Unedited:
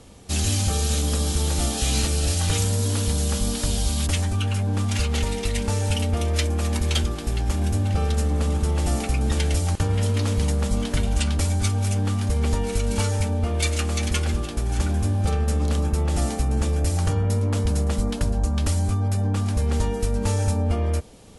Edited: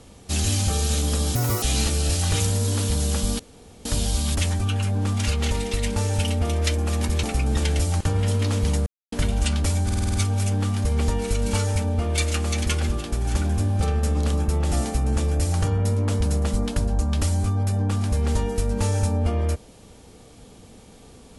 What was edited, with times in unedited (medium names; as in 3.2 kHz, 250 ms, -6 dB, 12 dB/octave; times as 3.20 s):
1.35–1.80 s: speed 165%
3.57 s: insert room tone 0.46 s
6.95–8.98 s: delete
10.61–10.87 s: mute
11.59 s: stutter 0.05 s, 7 plays